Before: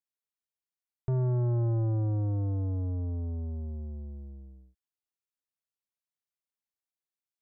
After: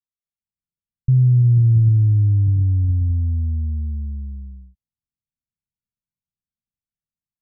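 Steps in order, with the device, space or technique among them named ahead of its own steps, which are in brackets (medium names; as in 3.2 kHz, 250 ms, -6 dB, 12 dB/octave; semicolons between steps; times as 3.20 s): inverse Chebyshev low-pass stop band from 540 Hz, stop band 50 dB; action camera in a waterproof case (low-pass 1.2 kHz 24 dB/octave; level rider gain up to 11.5 dB; trim +2.5 dB; AAC 48 kbps 48 kHz)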